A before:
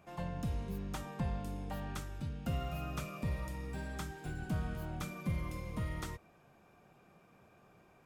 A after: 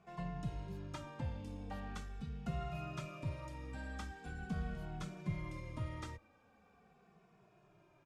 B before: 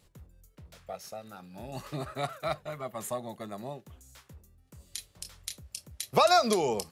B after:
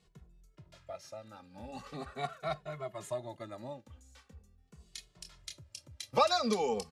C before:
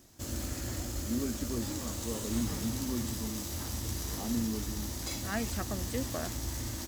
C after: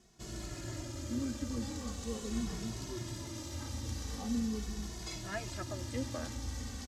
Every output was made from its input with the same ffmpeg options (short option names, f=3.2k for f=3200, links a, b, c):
-filter_complex "[0:a]lowpass=7k,asplit=2[a][b];[b]adelay=2.3,afreqshift=-0.42[c];[a][c]amix=inputs=2:normalize=1,volume=-1dB"